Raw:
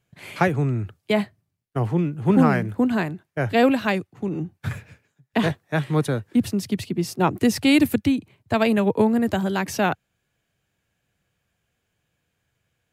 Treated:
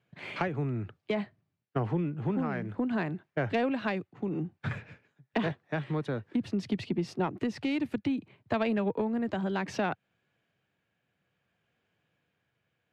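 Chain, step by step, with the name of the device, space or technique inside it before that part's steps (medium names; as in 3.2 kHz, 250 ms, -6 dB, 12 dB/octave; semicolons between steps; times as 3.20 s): AM radio (band-pass 130–3400 Hz; compression 5:1, threshold -25 dBFS, peak gain reduction 12 dB; saturation -16.5 dBFS, distortion -24 dB; tremolo 0.59 Hz, depth 27%)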